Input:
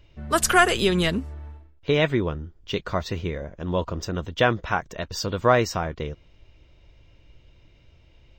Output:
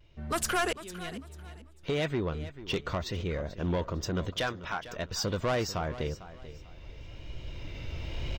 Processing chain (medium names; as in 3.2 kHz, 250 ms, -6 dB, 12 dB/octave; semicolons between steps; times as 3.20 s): recorder AGC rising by 10 dB/s; 0.73–2.12 s: fade in; 2.97–3.41 s: transient shaper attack -3 dB, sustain +3 dB; 4.30–4.87 s: bass shelf 470 Hz -11 dB; saturation -18 dBFS, distortion -10 dB; feedback delay 446 ms, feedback 29%, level -15 dB; vibrato 0.99 Hz 42 cents; trim -5.5 dB